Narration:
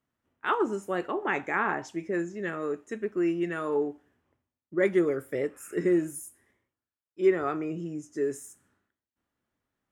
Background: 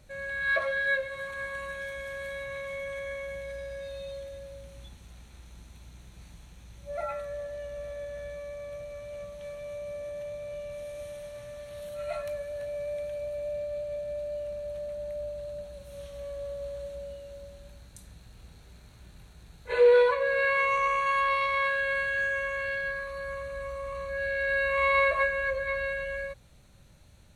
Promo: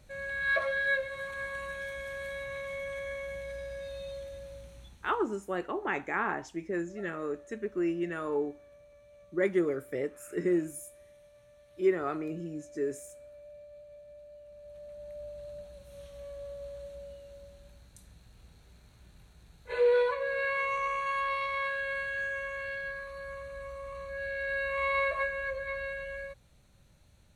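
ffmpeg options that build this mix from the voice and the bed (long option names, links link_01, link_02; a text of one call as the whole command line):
ffmpeg -i stem1.wav -i stem2.wav -filter_complex "[0:a]adelay=4600,volume=-3.5dB[link_01];[1:a]volume=9.5dB,afade=type=out:start_time=4.56:duration=0.82:silence=0.177828,afade=type=in:start_time=14.46:duration=1.03:silence=0.281838[link_02];[link_01][link_02]amix=inputs=2:normalize=0" out.wav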